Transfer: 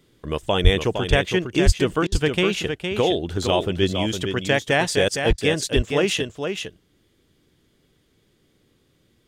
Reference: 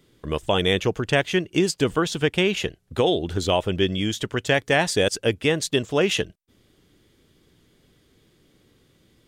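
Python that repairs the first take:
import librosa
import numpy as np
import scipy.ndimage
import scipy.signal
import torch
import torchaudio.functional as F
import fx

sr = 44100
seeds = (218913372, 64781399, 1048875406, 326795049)

y = fx.highpass(x, sr, hz=140.0, slope=24, at=(0.63, 0.75), fade=0.02)
y = fx.highpass(y, sr, hz=140.0, slope=24, at=(1.65, 1.77), fade=0.02)
y = fx.highpass(y, sr, hz=140.0, slope=24, at=(5.29, 5.41), fade=0.02)
y = fx.fix_interpolate(y, sr, at_s=(2.07, 5.33), length_ms=49.0)
y = fx.fix_echo_inverse(y, sr, delay_ms=461, level_db=-6.5)
y = fx.gain(y, sr, db=fx.steps((0.0, 0.0), (6.19, 4.0)))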